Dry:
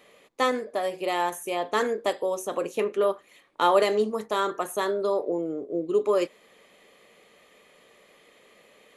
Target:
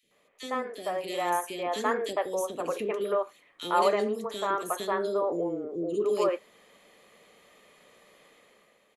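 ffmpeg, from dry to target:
ffmpeg -i in.wav -filter_complex "[0:a]dynaudnorm=framelen=130:gausssize=9:maxgain=9.5dB,acrossover=split=410|2500[link_01][link_02][link_03];[link_01]adelay=30[link_04];[link_02]adelay=110[link_05];[link_04][link_05][link_03]amix=inputs=3:normalize=0,volume=-9dB" out.wav

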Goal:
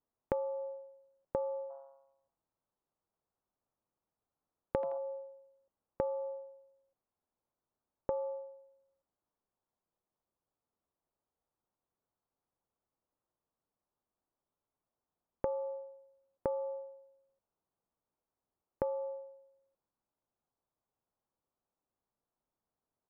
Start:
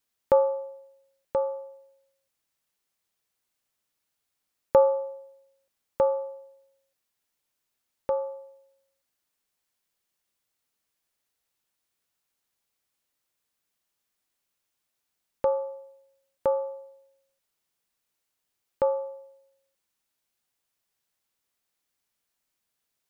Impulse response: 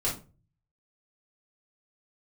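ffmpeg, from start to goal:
-filter_complex "[0:a]lowpass=frequency=1100:width=0.5412,lowpass=frequency=1100:width=1.3066,acompressor=threshold=-31dB:ratio=20,asplit=3[link_01][link_02][link_03];[link_01]afade=type=out:start_time=1.69:duration=0.02[link_04];[link_02]asplit=5[link_05][link_06][link_07][link_08][link_09];[link_06]adelay=83,afreqshift=140,volume=-14.5dB[link_10];[link_07]adelay=166,afreqshift=280,volume=-22.5dB[link_11];[link_08]adelay=249,afreqshift=420,volume=-30.4dB[link_12];[link_09]adelay=332,afreqshift=560,volume=-38.4dB[link_13];[link_05][link_10][link_11][link_12][link_13]amix=inputs=5:normalize=0,afade=type=in:start_time=1.69:duration=0.02,afade=type=out:start_time=4.97:duration=0.02[link_14];[link_03]afade=type=in:start_time=4.97:duration=0.02[link_15];[link_04][link_14][link_15]amix=inputs=3:normalize=0"

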